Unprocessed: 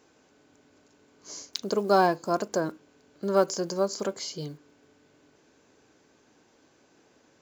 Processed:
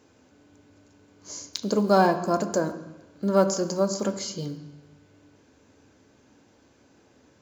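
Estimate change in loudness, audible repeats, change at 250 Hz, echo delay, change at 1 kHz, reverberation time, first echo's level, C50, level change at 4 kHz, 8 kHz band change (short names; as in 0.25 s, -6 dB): +2.5 dB, none, +6.0 dB, none, +1.5 dB, 1.0 s, none, 11.5 dB, +1.0 dB, n/a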